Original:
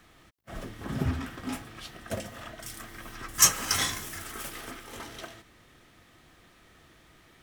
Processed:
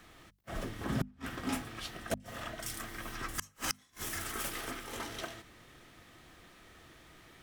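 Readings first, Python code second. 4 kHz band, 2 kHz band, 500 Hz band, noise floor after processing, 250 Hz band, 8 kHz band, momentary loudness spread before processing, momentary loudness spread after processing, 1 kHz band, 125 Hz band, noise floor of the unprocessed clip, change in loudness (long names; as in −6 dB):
−9.5 dB, −4.5 dB, −2.0 dB, −64 dBFS, −2.5 dB, −14.0 dB, 22 LU, 20 LU, −4.5 dB, −6.0 dB, −59 dBFS, −10.0 dB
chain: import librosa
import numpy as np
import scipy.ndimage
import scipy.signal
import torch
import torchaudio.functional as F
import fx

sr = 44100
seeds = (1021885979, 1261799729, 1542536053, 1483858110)

y = fx.gate_flip(x, sr, shuts_db=-21.0, range_db=-39)
y = fx.hum_notches(y, sr, base_hz=50, count=5)
y = y * librosa.db_to_amplitude(1.0)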